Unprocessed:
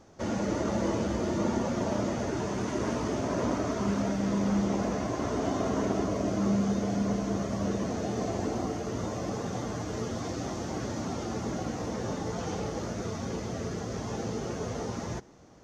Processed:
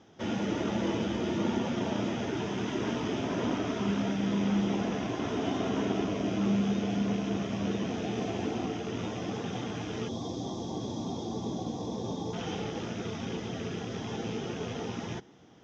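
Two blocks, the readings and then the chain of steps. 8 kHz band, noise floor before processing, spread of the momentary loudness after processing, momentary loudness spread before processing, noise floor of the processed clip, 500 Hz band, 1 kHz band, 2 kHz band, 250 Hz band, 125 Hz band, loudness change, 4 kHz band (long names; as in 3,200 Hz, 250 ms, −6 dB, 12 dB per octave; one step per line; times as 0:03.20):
−5.5 dB, −37 dBFS, 7 LU, 6 LU, −38 dBFS, −2.5 dB, −2.5 dB, +0.5 dB, −0.5 dB, −2.0 dB, −1.0 dB, +3.5 dB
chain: loose part that buzzes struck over −35 dBFS, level −39 dBFS
gain on a spectral selection 0:10.08–0:12.33, 1,200–3,200 Hz −17 dB
loudspeaker in its box 110–5,600 Hz, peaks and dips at 580 Hz −7 dB, 1,100 Hz −5 dB, 3,200 Hz +9 dB
notch filter 4,400 Hz, Q 6.2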